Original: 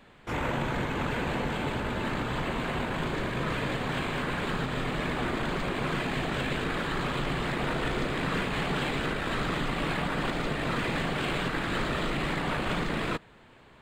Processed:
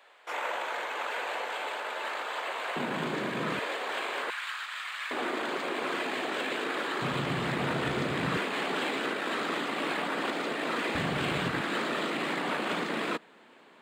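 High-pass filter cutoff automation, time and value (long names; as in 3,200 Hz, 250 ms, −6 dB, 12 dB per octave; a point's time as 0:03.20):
high-pass filter 24 dB per octave
520 Hz
from 0:02.76 170 Hz
from 0:03.59 420 Hz
from 0:04.30 1,200 Hz
from 0:05.11 290 Hz
from 0:07.02 91 Hz
from 0:08.37 250 Hz
from 0:10.95 75 Hz
from 0:11.61 220 Hz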